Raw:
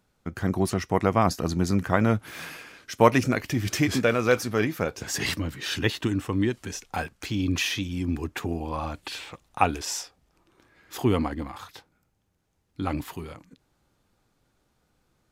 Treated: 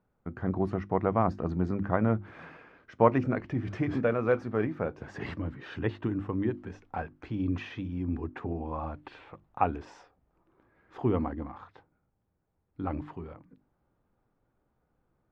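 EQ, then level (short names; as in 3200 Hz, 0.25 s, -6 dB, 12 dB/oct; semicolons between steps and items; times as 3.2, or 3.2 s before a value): LPF 1300 Hz 12 dB/oct; notches 50/100/150/200/250/300/350 Hz; -3.5 dB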